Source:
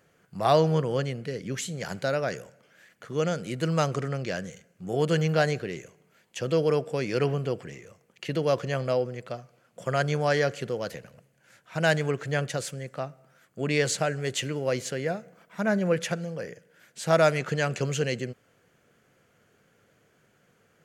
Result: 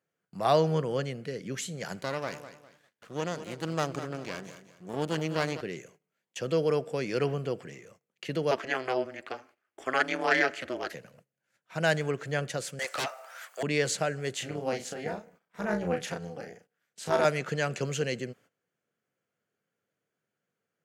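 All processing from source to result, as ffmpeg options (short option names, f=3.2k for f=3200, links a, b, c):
-filter_complex "[0:a]asettb=1/sr,asplit=3[a][b][c];[a]atrim=end=2.014[d];[b]atrim=start=2.01:end=5.61,asetpts=PTS-STARTPTS,afade=t=in:d=0.004:c=qsin,afade=t=out:st=3.596:d=0.004:c=qsin,aeval=exprs='max(val(0),0)':c=same,aecho=1:1:201|402|603:0.237|0.0759|0.0243,atrim=end_sample=158760[e];[c]atrim=start=5.606[f];[d][e]acrossfade=d=0.004:c1=hsin:c2=qsin[g];[g][f]acrossfade=d=0.004:c1=qsin:c2=hsin,asettb=1/sr,asplit=3[h][i][j];[h]atrim=end=8.514[k];[i]atrim=start=8.51:end=10.93,asetpts=PTS-STARTPTS,afade=t=in:d=0.004:c=qsin,afade=t=out:st=2.416:d=0.004:c=qsin,highpass=180,equalizer=f=1.9k:w=0.85:g=11.5,aeval=exprs='val(0)*sin(2*PI*130*n/s)':c=same[l];[j]atrim=start=10.926[m];[k][l]acrossfade=d=0.004:c1=hsin:c2=qsin[n];[n][m]acrossfade=d=0.004:c1=qsin:c2=hsin,asettb=1/sr,asplit=3[o][p][q];[o]atrim=end=12.794[r];[p]atrim=start=12.79:end=13.63,asetpts=PTS-STARTPTS,afade=t=in:d=0.004:c=qsin,afade=t=out:st=0.836:d=0.004:c=qsin,highpass=f=700:w=0.5412,highpass=f=700:w=1.3066,aeval=exprs='0.0596*sin(PI/2*5.62*val(0)/0.0596)':c=same[s];[q]atrim=start=13.626[t];[r][s]acrossfade=d=0.004:c1=hsin:c2=qsin[u];[u][t]acrossfade=d=0.004:c1=qsin:c2=hsin,asettb=1/sr,asplit=3[v][w][x];[v]atrim=end=14.354[y];[w]atrim=start=14.35:end=17.25,asetpts=PTS-STARTPTS,afade=t=in:d=0.004:c=qsin,afade=t=out:st=2.896:d=0.004:c=qsin,asplit=2[z][aa];[aa]adelay=34,volume=-5dB[ab];[z][ab]amix=inputs=2:normalize=0,atrim=end_sample=127890,tremolo=f=260:d=0.824[ac];[x]atrim=start=17.246[ad];[y][ac]acrossfade=d=0.004:c1=hsin:c2=qsin[ae];[ae][ad]acrossfade=d=0.004:c1=qsin:c2=hsin,agate=range=-18dB:threshold=-53dB:ratio=16:detection=peak,highpass=130,volume=-2.5dB"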